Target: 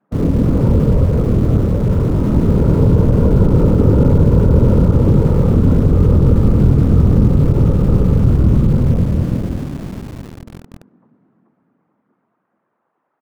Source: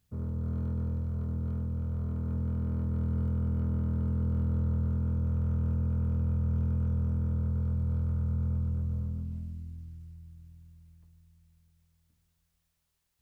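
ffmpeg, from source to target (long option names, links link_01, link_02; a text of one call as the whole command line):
ffmpeg -i in.wav -filter_complex "[0:a]lowpass=frequency=1300:width=0.5412,lowpass=frequency=1300:width=1.3066,lowshelf=frequency=73:gain=-9,aecho=1:1:435|870|1305|1740:0.596|0.203|0.0689|0.0234,afftfilt=real='hypot(re,im)*cos(2*PI*random(0))':imag='hypot(re,im)*sin(2*PI*random(1))':win_size=512:overlap=0.75,adynamicequalizer=threshold=0.00158:dfrequency=410:dqfactor=1.1:tfrequency=410:tqfactor=1.1:attack=5:release=100:ratio=0.375:range=2.5:mode=boostabove:tftype=bell,acrossover=split=230|390[link_01][link_02][link_03];[link_01]aeval=exprs='val(0)*gte(abs(val(0)),0.00158)':channel_layout=same[link_04];[link_04][link_02][link_03]amix=inputs=3:normalize=0,alimiter=level_in=28.5dB:limit=-1dB:release=50:level=0:latency=1,volume=-1dB" out.wav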